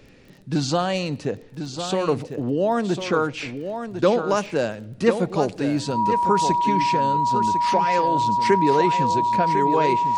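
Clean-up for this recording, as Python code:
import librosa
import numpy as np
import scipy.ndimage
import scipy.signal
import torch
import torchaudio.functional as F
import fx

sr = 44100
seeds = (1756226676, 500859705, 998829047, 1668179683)

y = fx.fix_declick_ar(x, sr, threshold=6.5)
y = fx.notch(y, sr, hz=960.0, q=30.0)
y = fx.fix_echo_inverse(y, sr, delay_ms=1051, level_db=-8.5)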